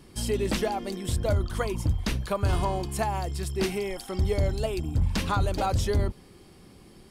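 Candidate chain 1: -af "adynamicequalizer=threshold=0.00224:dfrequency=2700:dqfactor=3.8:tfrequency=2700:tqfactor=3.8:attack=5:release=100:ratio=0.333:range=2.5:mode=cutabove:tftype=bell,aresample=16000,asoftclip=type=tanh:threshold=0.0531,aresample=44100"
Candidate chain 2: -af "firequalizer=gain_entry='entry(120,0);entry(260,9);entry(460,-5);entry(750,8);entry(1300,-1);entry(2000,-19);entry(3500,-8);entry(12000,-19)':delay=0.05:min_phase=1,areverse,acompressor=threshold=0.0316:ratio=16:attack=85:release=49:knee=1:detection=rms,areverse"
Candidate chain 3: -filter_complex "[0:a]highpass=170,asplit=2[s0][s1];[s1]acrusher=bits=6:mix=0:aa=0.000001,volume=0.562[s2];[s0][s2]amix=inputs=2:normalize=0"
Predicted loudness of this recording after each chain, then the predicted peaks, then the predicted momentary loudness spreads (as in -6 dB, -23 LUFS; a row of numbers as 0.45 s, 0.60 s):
-32.0 LUFS, -31.0 LUFS, -27.0 LUFS; -22.0 dBFS, -17.5 dBFS, -11.5 dBFS; 3 LU, 9 LU, 6 LU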